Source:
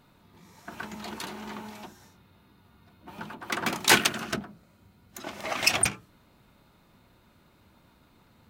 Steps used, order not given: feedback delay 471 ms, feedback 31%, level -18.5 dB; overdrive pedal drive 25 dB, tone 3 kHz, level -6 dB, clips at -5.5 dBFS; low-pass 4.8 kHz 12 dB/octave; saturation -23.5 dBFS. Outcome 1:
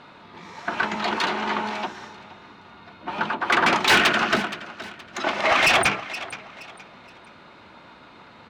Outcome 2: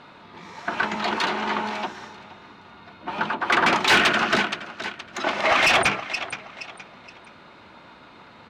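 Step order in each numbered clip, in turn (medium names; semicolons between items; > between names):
low-pass > saturation > feedback delay > overdrive pedal; feedback delay > saturation > low-pass > overdrive pedal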